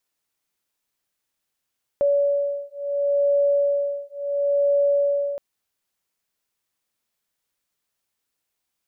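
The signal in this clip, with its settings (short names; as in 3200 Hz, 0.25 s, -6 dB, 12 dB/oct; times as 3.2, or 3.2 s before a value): beating tones 568 Hz, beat 0.72 Hz, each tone -21.5 dBFS 3.37 s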